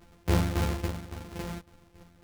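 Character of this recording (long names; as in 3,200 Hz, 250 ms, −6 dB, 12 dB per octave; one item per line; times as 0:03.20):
a buzz of ramps at a fixed pitch in blocks of 256 samples
tremolo saw down 3.6 Hz, depth 75%
a shimmering, thickened sound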